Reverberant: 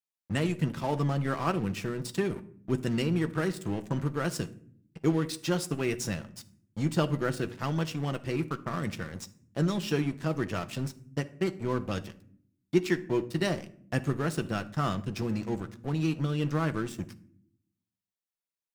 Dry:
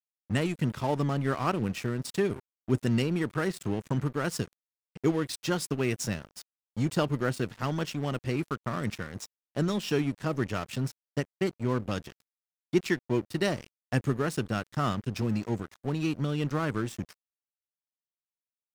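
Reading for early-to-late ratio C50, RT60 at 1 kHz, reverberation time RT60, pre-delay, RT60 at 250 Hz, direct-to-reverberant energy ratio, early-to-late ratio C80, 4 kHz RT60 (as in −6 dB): 17.0 dB, 0.50 s, 0.55 s, 6 ms, 1.0 s, 8.0 dB, 21.0 dB, 0.35 s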